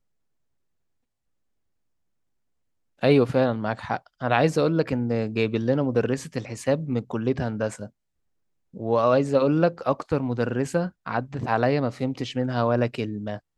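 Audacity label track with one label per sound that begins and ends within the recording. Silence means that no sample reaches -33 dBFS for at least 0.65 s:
3.030000	7.860000	sound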